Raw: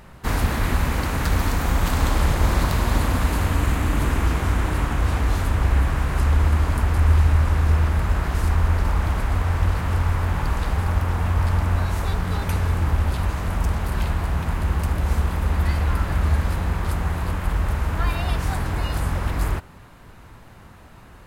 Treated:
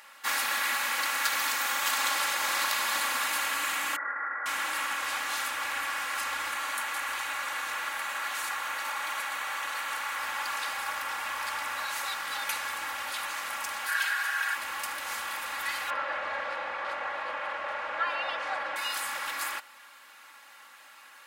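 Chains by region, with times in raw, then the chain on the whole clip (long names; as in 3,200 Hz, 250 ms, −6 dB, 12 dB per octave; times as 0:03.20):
0:03.96–0:04.46: Chebyshev low-pass with heavy ripple 2,000 Hz, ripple 6 dB + spectral tilt +3.5 dB per octave
0:06.51–0:10.18: low-shelf EQ 140 Hz −9 dB + notch filter 5,100 Hz, Q 10
0:13.87–0:14.55: high-pass filter 1,100 Hz 6 dB per octave + parametric band 1,600 Hz +13 dB 0.31 octaves + comb filter 6.3 ms, depth 71%
0:15.90–0:18.76: low-pass filter 2,600 Hz + parametric band 560 Hz +12 dB 0.76 octaves
whole clip: high-pass filter 1,400 Hz 12 dB per octave; comb filter 3.6 ms, depth 77%; level +1.5 dB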